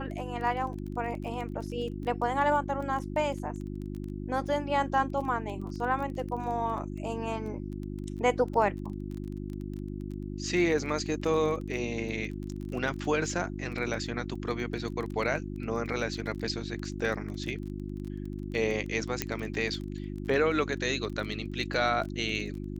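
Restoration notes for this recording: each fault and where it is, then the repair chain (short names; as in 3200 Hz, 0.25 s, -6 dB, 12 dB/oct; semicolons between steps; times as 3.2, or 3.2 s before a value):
crackle 21/s -36 dBFS
hum 50 Hz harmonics 7 -37 dBFS
19.22 pop -11 dBFS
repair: de-click; de-hum 50 Hz, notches 7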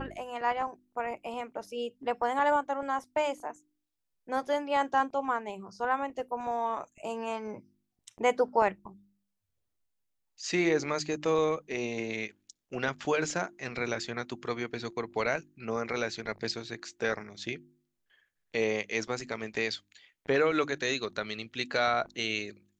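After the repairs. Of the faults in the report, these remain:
none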